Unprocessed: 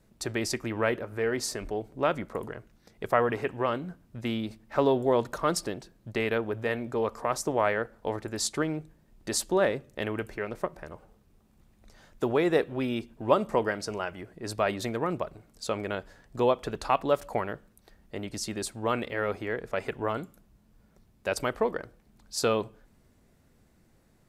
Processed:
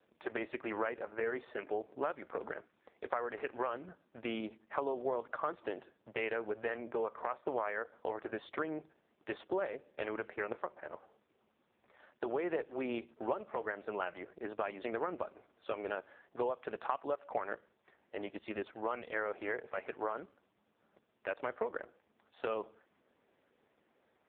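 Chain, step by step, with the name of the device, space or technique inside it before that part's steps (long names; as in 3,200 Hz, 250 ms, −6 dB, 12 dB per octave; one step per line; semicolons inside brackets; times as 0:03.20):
voicemail (band-pass filter 410–2,800 Hz; downward compressor 8 to 1, threshold −33 dBFS, peak gain reduction 16 dB; level +2 dB; AMR narrowband 4.75 kbit/s 8,000 Hz)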